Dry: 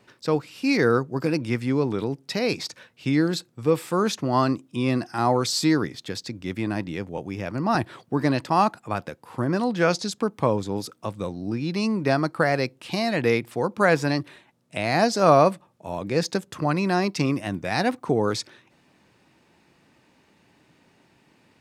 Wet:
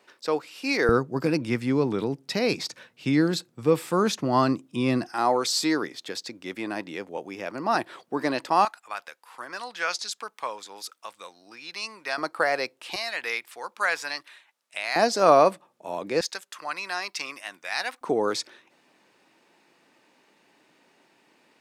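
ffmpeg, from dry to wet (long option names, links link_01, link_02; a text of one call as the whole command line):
ffmpeg -i in.wav -af "asetnsamples=nb_out_samples=441:pad=0,asendcmd='0.89 highpass f 130;5.09 highpass f 360;8.65 highpass f 1200;12.18 highpass f 540;12.96 highpass f 1200;14.96 highpass f 310;16.21 highpass f 1200;18.01 highpass f 320',highpass=410" out.wav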